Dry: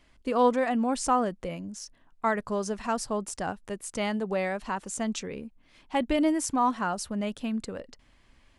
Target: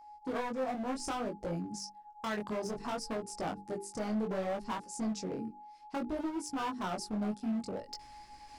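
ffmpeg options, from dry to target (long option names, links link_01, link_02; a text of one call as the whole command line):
ffmpeg -i in.wav -af "afwtdn=0.0355,areverse,acompressor=mode=upward:threshold=-42dB:ratio=2.5,areverse,aeval=exprs='val(0)+0.00282*sin(2*PI*840*n/s)':channel_layout=same,equalizer=frequency=315:width_type=o:width=0.33:gain=5,equalizer=frequency=3150:width_type=o:width=0.33:gain=-8,equalizer=frequency=5000:width_type=o:width=0.33:gain=10,acompressor=threshold=-28dB:ratio=8,bandreject=frequency=50:width_type=h:width=6,bandreject=frequency=100:width_type=h:width=6,bandreject=frequency=150:width_type=h:width=6,bandreject=frequency=200:width_type=h:width=6,bandreject=frequency=250:width_type=h:width=6,bandreject=frequency=300:width_type=h:width=6,bandreject=frequency=350:width_type=h:width=6,bandreject=frequency=400:width_type=h:width=6,bandreject=frequency=450:width_type=h:width=6,aeval=exprs='0.119*(cos(1*acos(clip(val(0)/0.119,-1,1)))-cos(1*PI/2))+0.00473*(cos(7*acos(clip(val(0)/0.119,-1,1)))-cos(7*PI/2))':channel_layout=same,highshelf=frequency=2900:gain=9,volume=34.5dB,asoftclip=hard,volume=-34.5dB,flanger=delay=17.5:depth=6.2:speed=0.62,volume=5.5dB" out.wav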